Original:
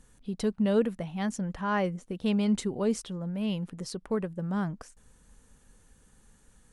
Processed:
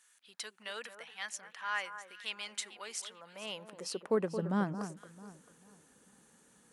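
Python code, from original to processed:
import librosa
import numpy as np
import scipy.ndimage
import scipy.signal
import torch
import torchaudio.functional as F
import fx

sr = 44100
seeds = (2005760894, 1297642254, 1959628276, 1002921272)

y = fx.filter_sweep_highpass(x, sr, from_hz=1700.0, to_hz=230.0, start_s=2.96, end_s=4.34, q=1.0)
y = fx.echo_alternate(y, sr, ms=222, hz=1600.0, feedback_pct=53, wet_db=-9.5)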